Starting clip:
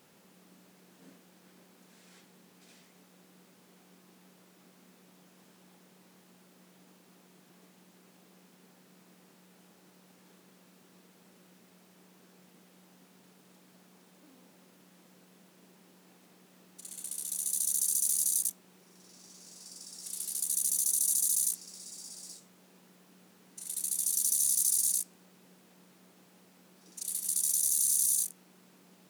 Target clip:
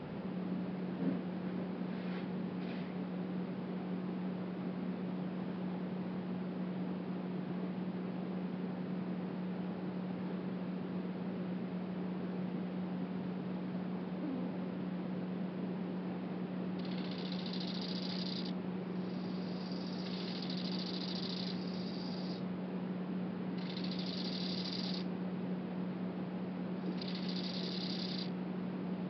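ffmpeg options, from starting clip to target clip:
-filter_complex "[0:a]aresample=11025,aresample=44100,bass=f=250:g=6,treble=f=4000:g=-14,acrossover=split=870[s0][s1];[s0]acontrast=75[s2];[s2][s1]amix=inputs=2:normalize=0,volume=3.98"

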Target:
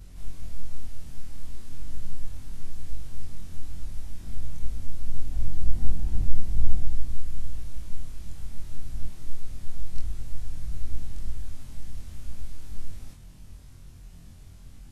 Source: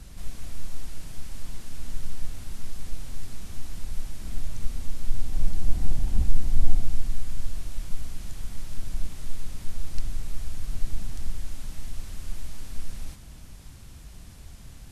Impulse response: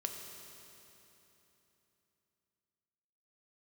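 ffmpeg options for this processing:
-af "afftfilt=real='re':imag='-im':win_size=2048:overlap=0.75,lowshelf=f=420:g=5.5,volume=0.75"

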